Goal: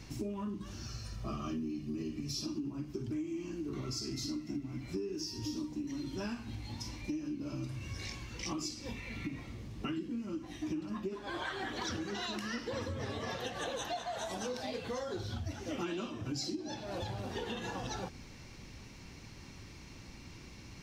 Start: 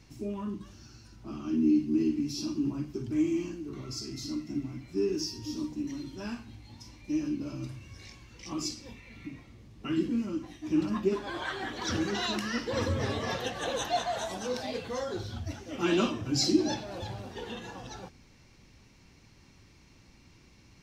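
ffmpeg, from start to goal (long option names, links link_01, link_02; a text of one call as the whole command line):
ffmpeg -i in.wav -filter_complex "[0:a]asettb=1/sr,asplit=3[link_01][link_02][link_03];[link_01]atrim=end=0.864[link_04];[link_02]atrim=start=0.86:end=2.46,asetpts=PTS-STARTPTS,afade=type=in:duration=0.004:curve=qsin,afade=type=out:start_time=1.596:duration=0.004:curve=qsin,aecho=1:1:1.7:0.67,atrim=end_sample=70560[link_05];[link_03]atrim=start=2.456[link_06];[link_04][link_05]acrossfade=duration=0.004:curve1=hsin:curve2=qsin[link_07];[link_07][link_06]acrossfade=duration=0.004:curve1=qsin:curve2=hsin,acompressor=threshold=-42dB:ratio=16,volume=7dB" out.wav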